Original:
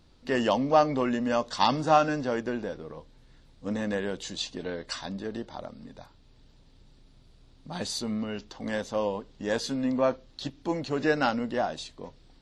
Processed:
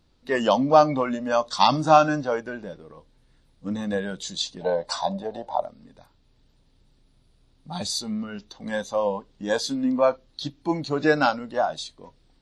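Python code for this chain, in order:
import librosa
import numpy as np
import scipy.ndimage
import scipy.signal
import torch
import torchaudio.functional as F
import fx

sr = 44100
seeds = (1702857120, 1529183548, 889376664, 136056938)

y = fx.band_shelf(x, sr, hz=710.0, db=11.0, octaves=1.2, at=(4.61, 5.62))
y = fx.noise_reduce_blind(y, sr, reduce_db=10)
y = y * 10.0 ** (5.5 / 20.0)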